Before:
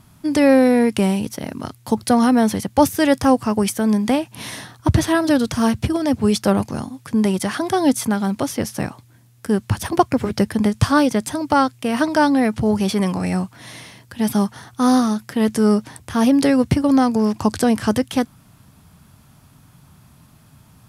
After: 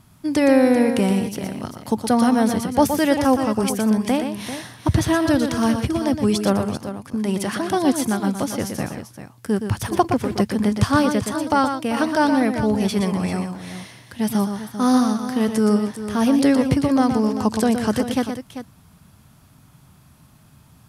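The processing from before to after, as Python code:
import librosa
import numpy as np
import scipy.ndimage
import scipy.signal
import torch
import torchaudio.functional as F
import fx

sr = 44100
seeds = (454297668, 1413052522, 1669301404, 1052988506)

y = fx.level_steps(x, sr, step_db=20, at=(6.77, 7.29))
y = fx.echo_multitap(y, sr, ms=(119, 392), db=(-7.5, -11.5))
y = F.gain(torch.from_numpy(y), -2.5).numpy()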